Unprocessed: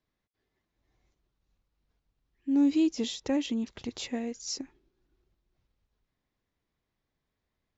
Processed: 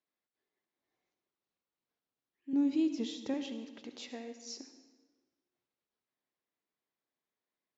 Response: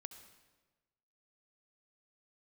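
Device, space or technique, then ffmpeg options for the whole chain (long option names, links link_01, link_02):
supermarket ceiling speaker: -filter_complex "[0:a]asettb=1/sr,asplit=3[link_01][link_02][link_03];[link_01]atrim=end=2.534[link_04];[link_02]atrim=start=2.53:end=3.34,asetpts=PTS-STARTPTS,afade=type=in:duration=0.004:curve=qsin,afade=type=out:start_time=0.806:duration=0.004:curve=qsin,bass=frequency=250:gain=15,treble=frequency=4000:gain=0[link_05];[link_03]atrim=start=3.336[link_06];[link_04][link_05]acrossfade=duration=0.004:curve1=hsin:curve2=qsin[link_07];[link_07][link_06]acrossfade=duration=0.004:curve1=qsin:curve2=hsin,highpass=290,lowpass=6300[link_08];[1:a]atrim=start_sample=2205[link_09];[link_08][link_09]afir=irnorm=-1:irlink=0,volume=-2dB"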